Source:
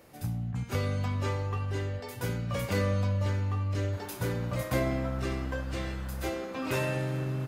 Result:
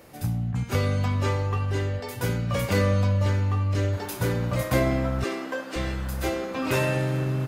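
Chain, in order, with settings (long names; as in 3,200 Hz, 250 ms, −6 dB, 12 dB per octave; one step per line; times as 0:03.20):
0:05.24–0:05.76: high-pass filter 270 Hz 24 dB per octave
level +6 dB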